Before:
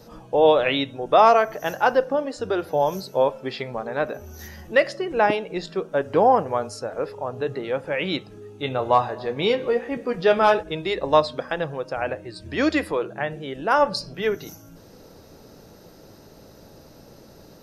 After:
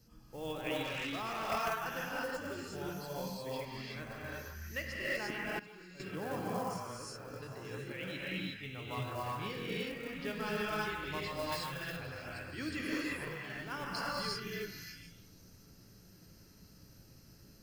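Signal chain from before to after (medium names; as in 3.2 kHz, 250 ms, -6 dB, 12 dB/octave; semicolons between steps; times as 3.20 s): repeats whose band climbs or falls 146 ms, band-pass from 1.1 kHz, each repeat 0.7 oct, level -3.5 dB; gated-style reverb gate 390 ms rising, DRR -6 dB; short-mantissa float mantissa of 4-bit; amplifier tone stack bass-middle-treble 6-0-2; band-stop 3.7 kHz, Q 6; 0.83–1.50 s: overload inside the chain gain 36 dB; 5.59–6.00 s: level held to a coarse grid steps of 18 dB; 11.52–11.97 s: treble shelf 4.6 kHz +10 dB; trim +1 dB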